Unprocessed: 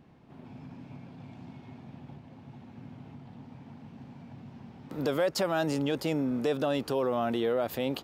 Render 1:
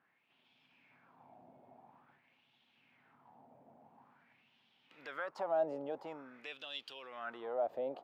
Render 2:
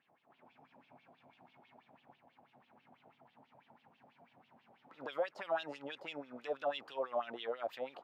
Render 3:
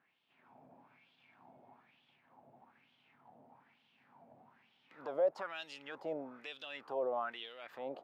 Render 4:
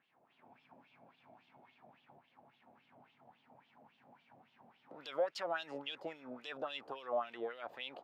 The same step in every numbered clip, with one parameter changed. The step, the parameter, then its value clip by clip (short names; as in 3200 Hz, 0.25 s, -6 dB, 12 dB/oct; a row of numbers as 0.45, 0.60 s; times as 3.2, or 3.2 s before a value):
wah, rate: 0.48, 6.1, 1.1, 3.6 Hz